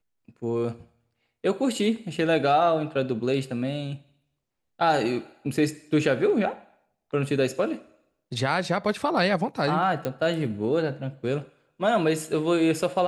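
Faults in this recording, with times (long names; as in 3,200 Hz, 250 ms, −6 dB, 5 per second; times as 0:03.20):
0:10.05: click −15 dBFS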